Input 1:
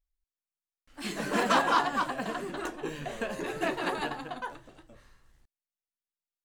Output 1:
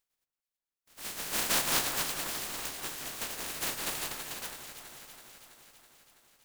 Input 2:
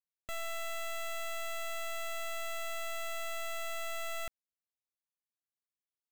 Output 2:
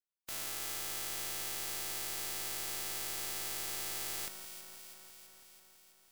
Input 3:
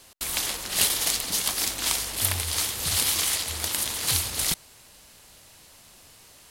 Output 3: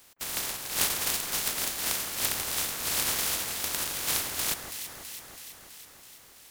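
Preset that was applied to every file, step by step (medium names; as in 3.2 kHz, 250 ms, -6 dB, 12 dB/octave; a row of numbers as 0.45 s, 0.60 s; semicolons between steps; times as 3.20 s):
spectral contrast reduction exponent 0.15; echo whose repeats swap between lows and highs 164 ms, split 1.9 kHz, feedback 81%, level -8 dB; trim -4 dB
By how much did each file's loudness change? -1.5 LU, +2.0 LU, -4.0 LU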